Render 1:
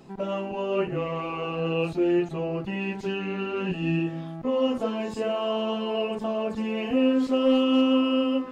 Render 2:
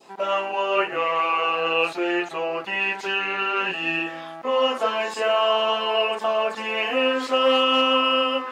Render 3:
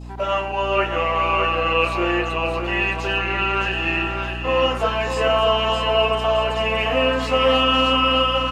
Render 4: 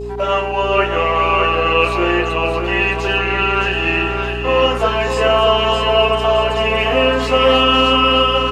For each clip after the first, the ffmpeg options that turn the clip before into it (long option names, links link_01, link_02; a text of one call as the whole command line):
ffmpeg -i in.wav -af "highpass=690,adynamicequalizer=threshold=0.00562:dfrequency=1600:dqfactor=0.86:tfrequency=1600:tqfactor=0.86:attack=5:release=100:ratio=0.375:range=3:mode=boostabove:tftype=bell,volume=8.5dB" out.wav
ffmpeg -i in.wav -af "aeval=exprs='val(0)+0.0178*(sin(2*PI*60*n/s)+sin(2*PI*2*60*n/s)/2+sin(2*PI*3*60*n/s)/3+sin(2*PI*4*60*n/s)/4+sin(2*PI*5*60*n/s)/5)':channel_layout=same,aecho=1:1:617|1234|1851|2468|3085:0.501|0.19|0.0724|0.0275|0.0105,volume=1.5dB" out.wav
ffmpeg -i in.wav -af "aeval=exprs='val(0)+0.0355*sin(2*PI*410*n/s)':channel_layout=same,volume=4.5dB" out.wav